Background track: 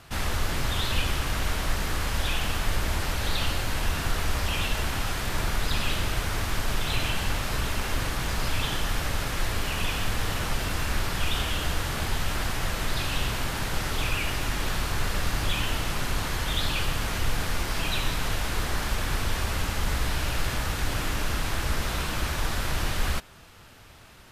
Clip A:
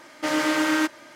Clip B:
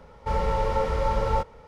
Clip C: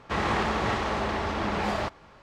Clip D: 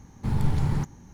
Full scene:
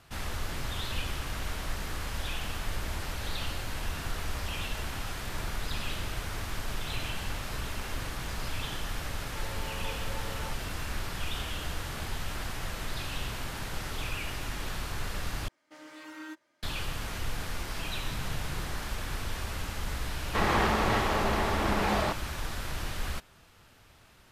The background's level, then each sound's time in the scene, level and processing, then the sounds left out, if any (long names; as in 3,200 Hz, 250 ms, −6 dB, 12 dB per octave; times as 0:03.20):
background track −7.5 dB
0:09.09: mix in B −18 dB
0:15.48: overwrite with A −18 dB + noise reduction from a noise print of the clip's start 8 dB
0:17.87: mix in D −16.5 dB
0:20.24: mix in C